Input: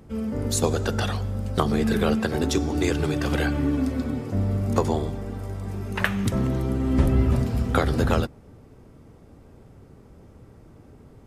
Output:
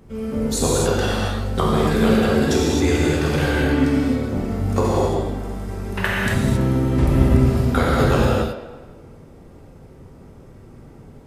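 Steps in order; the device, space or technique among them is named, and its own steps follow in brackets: filtered reverb send (on a send at -11 dB: high-pass 380 Hz + low-pass 5.5 kHz + reverberation RT60 1.6 s, pre-delay 79 ms); 3.53–3.99 s: on the sum: peaking EQ 2.6 kHz +6.5 dB 2 oct; gated-style reverb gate 300 ms flat, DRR -5.5 dB; trim -1 dB

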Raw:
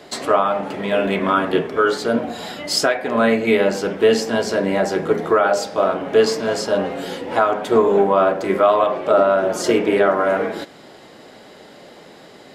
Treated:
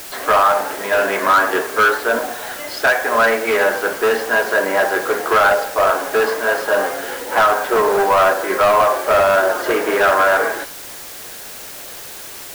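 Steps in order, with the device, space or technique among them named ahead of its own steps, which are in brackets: high-pass 200 Hz; drive-through speaker (band-pass 360–2800 Hz; peaking EQ 1.6 kHz +8.5 dB 0.33 oct; hard clipper -15 dBFS, distortion -10 dB; white noise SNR 12 dB); dynamic bell 1.1 kHz, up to +8 dB, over -33 dBFS, Q 0.75

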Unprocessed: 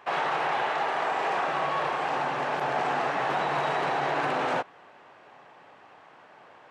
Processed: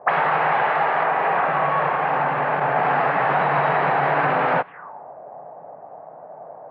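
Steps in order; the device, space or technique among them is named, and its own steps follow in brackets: 1.03–2.83 s: distance through air 110 m; envelope filter bass rig (touch-sensitive low-pass 570–5000 Hz up, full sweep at -26 dBFS; cabinet simulation 82–2200 Hz, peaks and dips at 160 Hz +6 dB, 240 Hz -3 dB, 350 Hz -7 dB); trim +8 dB

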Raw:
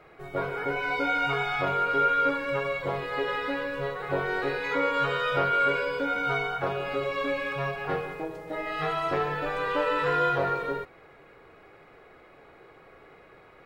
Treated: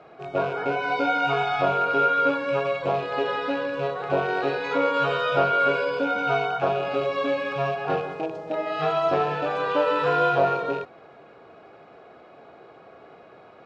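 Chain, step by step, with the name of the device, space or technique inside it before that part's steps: car door speaker with a rattle (rattle on loud lows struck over -40 dBFS, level -32 dBFS; cabinet simulation 110–6600 Hz, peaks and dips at 230 Hz +5 dB, 680 Hz +8 dB, 2 kHz -9 dB); trim +3 dB

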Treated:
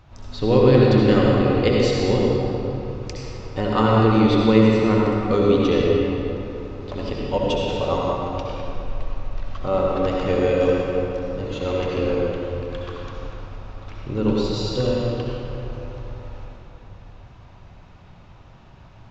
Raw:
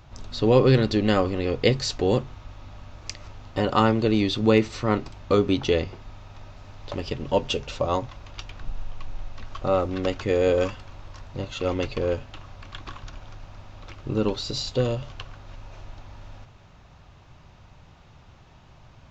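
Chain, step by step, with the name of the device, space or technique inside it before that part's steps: swimming-pool hall (reverberation RT60 3.1 s, pre-delay 61 ms, DRR -3.5 dB; treble shelf 4.2 kHz -6 dB); trim -1 dB

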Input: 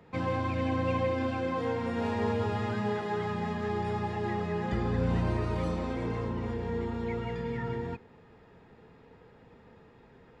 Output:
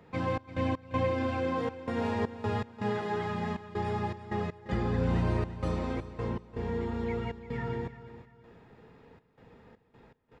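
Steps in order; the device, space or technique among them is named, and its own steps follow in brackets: trance gate with a delay (trance gate "xx.x.xxxx." 80 bpm -24 dB; feedback delay 344 ms, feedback 33%, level -14 dB)

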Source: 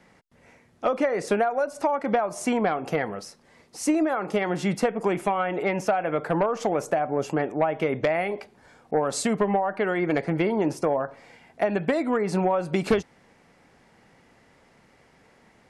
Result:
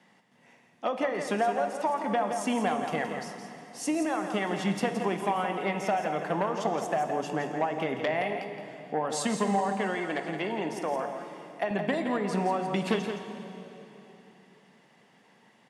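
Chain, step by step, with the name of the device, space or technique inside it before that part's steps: PA in a hall (high-pass 150 Hz 24 dB/octave; peaking EQ 3.2 kHz +7.5 dB 0.31 oct; delay 169 ms -8 dB; reverberation RT60 3.5 s, pre-delay 3 ms, DRR 7 dB); 9.95–11.71 s: high-pass 330 Hz 6 dB/octave; comb 1.1 ms, depth 32%; trim -5 dB

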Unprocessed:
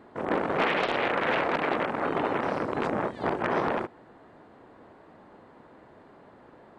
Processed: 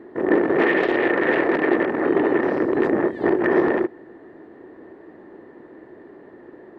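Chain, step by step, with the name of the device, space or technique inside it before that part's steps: inside a helmet (treble shelf 3.7 kHz -7 dB; small resonant body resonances 350/1800 Hz, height 16 dB, ringing for 25 ms)

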